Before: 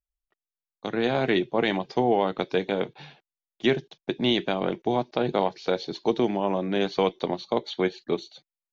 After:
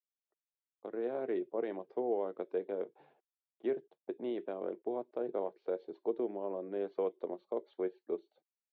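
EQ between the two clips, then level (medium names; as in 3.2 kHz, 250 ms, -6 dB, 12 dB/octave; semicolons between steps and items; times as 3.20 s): dynamic bell 820 Hz, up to -6 dB, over -42 dBFS, Q 2.9; ladder band-pass 530 Hz, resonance 30%; 0.0 dB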